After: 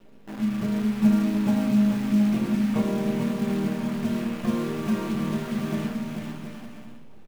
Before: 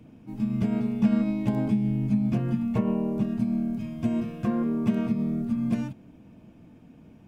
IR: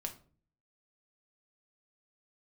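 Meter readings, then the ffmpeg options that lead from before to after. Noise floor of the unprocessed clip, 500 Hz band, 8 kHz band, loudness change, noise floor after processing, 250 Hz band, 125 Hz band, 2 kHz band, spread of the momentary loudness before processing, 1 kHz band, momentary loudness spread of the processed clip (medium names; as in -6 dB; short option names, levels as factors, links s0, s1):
-52 dBFS, +3.0 dB, no reading, +1.5 dB, -42 dBFS, +2.0 dB, -1.0 dB, +8.0 dB, 5 LU, +4.5 dB, 12 LU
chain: -filter_complex "[0:a]acrusher=bits=7:dc=4:mix=0:aa=0.000001,bass=f=250:g=-7,treble=f=4000:g=-9,acrusher=bits=6:mode=log:mix=0:aa=0.000001,aecho=1:1:440|726|911.9|1033|1111:0.631|0.398|0.251|0.158|0.1[s0];[1:a]atrim=start_sample=2205[s1];[s0][s1]afir=irnorm=-1:irlink=0,volume=1.33"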